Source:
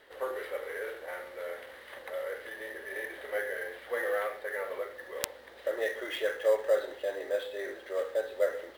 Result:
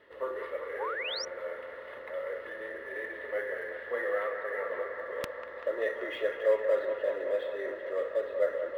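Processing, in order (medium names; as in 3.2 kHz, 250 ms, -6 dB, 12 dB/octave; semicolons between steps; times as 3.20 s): tone controls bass +4 dB, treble -15 dB; on a send: feedback echo behind a band-pass 193 ms, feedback 81%, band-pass 1.1 kHz, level -6 dB; on the sum: painted sound rise, 0.78–1.25 s, 740–6000 Hz -35 dBFS; comb of notches 770 Hz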